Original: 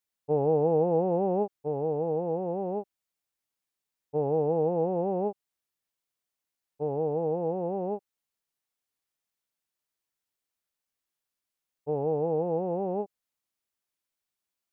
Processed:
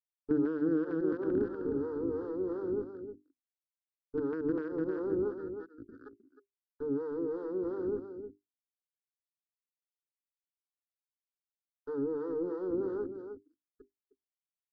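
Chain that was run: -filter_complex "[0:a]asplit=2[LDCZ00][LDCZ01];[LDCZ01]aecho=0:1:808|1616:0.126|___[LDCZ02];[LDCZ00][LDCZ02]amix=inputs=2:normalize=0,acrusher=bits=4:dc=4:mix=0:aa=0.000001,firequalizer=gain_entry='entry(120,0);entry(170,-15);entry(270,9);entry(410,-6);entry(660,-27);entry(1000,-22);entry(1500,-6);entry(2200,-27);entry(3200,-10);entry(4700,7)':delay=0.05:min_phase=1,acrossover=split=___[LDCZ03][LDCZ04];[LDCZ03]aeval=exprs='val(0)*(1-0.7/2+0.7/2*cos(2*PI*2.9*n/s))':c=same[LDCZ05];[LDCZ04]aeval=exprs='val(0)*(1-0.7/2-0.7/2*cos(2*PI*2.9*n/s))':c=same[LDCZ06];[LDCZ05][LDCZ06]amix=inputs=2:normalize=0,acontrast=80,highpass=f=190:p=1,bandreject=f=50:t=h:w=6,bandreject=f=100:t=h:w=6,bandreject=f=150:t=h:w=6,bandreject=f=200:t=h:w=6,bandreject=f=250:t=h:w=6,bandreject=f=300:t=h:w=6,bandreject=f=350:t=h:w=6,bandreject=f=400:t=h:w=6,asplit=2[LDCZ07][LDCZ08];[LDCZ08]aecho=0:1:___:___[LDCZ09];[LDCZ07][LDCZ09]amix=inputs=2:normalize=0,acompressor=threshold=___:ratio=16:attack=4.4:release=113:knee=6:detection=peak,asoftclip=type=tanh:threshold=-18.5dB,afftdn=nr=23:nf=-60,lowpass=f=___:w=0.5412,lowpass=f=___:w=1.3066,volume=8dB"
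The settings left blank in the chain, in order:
0.0252, 450, 310, 0.316, -30dB, 1300, 1300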